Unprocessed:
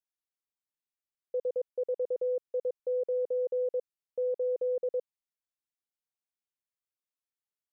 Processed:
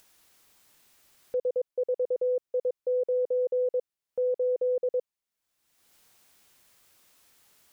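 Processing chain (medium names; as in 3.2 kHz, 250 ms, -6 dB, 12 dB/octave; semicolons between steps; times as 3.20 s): upward compressor, threshold -43 dBFS; trim +3.5 dB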